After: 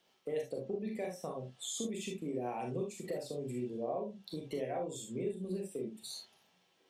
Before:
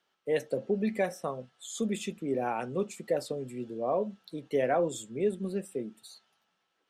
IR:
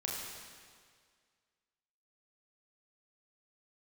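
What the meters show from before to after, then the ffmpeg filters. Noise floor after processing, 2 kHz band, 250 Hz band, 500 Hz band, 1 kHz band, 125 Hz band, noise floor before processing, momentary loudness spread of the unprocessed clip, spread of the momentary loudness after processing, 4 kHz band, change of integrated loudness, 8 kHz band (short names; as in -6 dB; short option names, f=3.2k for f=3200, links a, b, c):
-72 dBFS, -11.5 dB, -6.0 dB, -7.5 dB, -8.5 dB, -4.0 dB, -78 dBFS, 10 LU, 5 LU, -0.5 dB, -7.5 dB, -1.0 dB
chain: -filter_complex "[0:a]equalizer=f=1.4k:w=2.1:g=-10.5,acompressor=threshold=-46dB:ratio=4[a];[1:a]atrim=start_sample=2205,atrim=end_sample=3528[b];[a][b]afir=irnorm=-1:irlink=0,volume=7.5dB"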